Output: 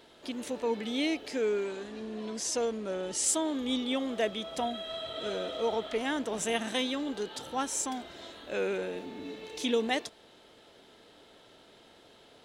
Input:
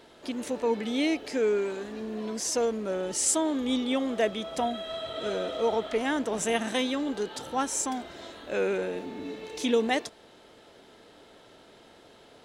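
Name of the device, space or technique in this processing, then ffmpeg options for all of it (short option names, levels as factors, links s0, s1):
presence and air boost: -filter_complex "[0:a]asettb=1/sr,asplit=3[s0][s1][s2];[s0]atrim=end=1.644[s3];[s1]atrim=start=1.64:end=3.24,asetpts=PTS-STARTPTS,afade=t=in:d=0.004:c=qsin,afade=t=out:st=1.596:d=0.004:c=qsin,lowpass=f=11000:w=0.5412,lowpass=f=11000:w=1.3066[s4];[s2]atrim=start=3.236[s5];[s3][s4]acrossfade=d=0.004:c1=hsin:c2=qsin[s6];[s6][s5]acrossfade=d=0.004:c1=qsin:c2=hsin,equalizer=f=3400:t=o:w=0.88:g=4,highshelf=f=11000:g=3.5,volume=0.631"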